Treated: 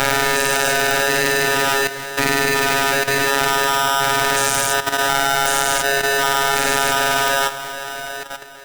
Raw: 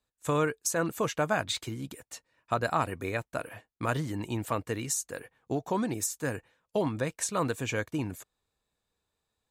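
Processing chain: stepped spectrum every 0.4 s; envelope phaser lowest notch 520 Hz, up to 2500 Hz, full sweep at -38 dBFS; robotiser 124 Hz; tape echo 0.485 s, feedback 67%, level -6 dB, low-pass 1700 Hz; wide varispeed 1.1×; low shelf 320 Hz -4 dB; delay with a stepping band-pass 0.111 s, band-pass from 520 Hz, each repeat 0.7 oct, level 0 dB; level quantiser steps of 11 dB; maximiser +27.5 dB; polarity switched at an audio rate 1100 Hz; gain -1 dB

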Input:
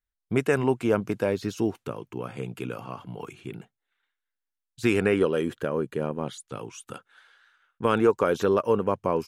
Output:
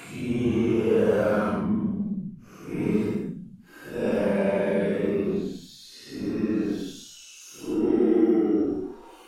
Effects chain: high-pass sweep 75 Hz -> 680 Hz, 0.08–2.69; added harmonics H 8 -30 dB, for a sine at -8.5 dBFS; Paulstretch 9.8×, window 0.05 s, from 0.81; gain -3 dB

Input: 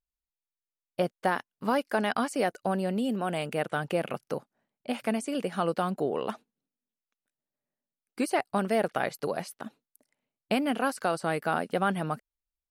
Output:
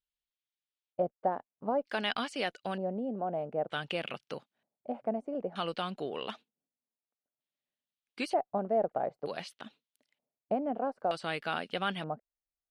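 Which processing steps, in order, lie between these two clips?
added harmonics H 4 -39 dB, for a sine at -13.5 dBFS; pre-emphasis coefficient 0.8; LFO low-pass square 0.54 Hz 690–3300 Hz; gain +5.5 dB

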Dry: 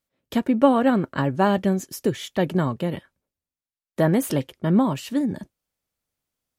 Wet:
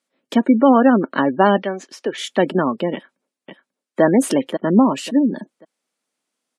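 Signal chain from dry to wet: 1.62–2.18 three-band isolator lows -13 dB, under 480 Hz, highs -20 dB, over 5000 Hz; 2.94–4.02 echo throw 0.54 s, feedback 25%, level -6.5 dB; spectral gate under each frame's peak -30 dB strong; Chebyshev band-pass 230–9700 Hz, order 3; maximiser +8.5 dB; gain -1 dB

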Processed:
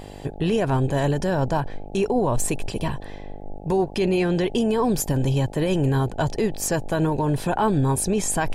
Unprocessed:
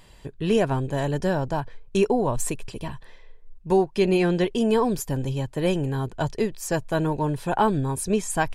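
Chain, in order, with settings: limiter -20.5 dBFS, peak gain reduction 10 dB; buzz 50 Hz, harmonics 17, -47 dBFS -2 dB/oct; gain +7 dB

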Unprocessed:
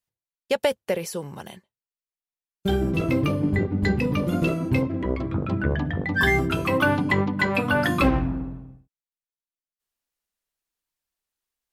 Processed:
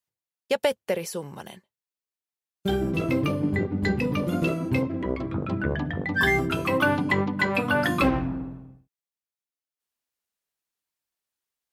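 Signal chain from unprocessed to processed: HPF 110 Hz 6 dB/oct; gain -1 dB

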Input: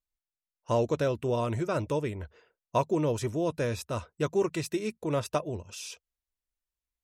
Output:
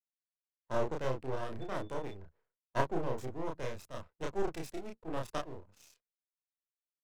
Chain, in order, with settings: Wiener smoothing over 15 samples; half-wave rectifier; 1.6–2.1 whine 3500 Hz -45 dBFS; doubler 31 ms -2 dB; three-band expander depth 70%; gain -6.5 dB

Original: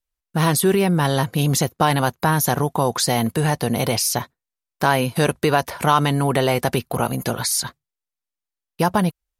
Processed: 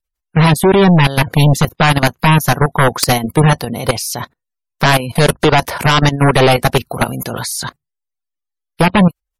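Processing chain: level quantiser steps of 19 dB; sine folder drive 12 dB, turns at -5.5 dBFS; spectral gate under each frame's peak -30 dB strong

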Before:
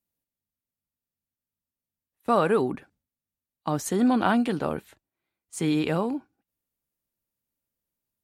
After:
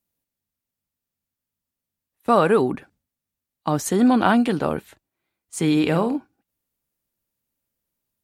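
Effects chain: 5.72–6.17 flutter echo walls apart 8.4 m, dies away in 0.24 s; gain +5 dB

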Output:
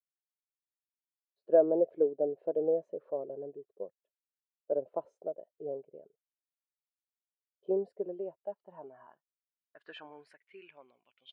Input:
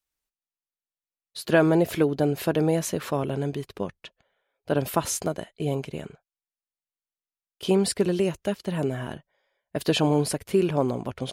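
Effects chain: expander -38 dBFS; band-pass sweep 540 Hz -> 2900 Hz, 7.73–11.23; spectral expander 1.5:1

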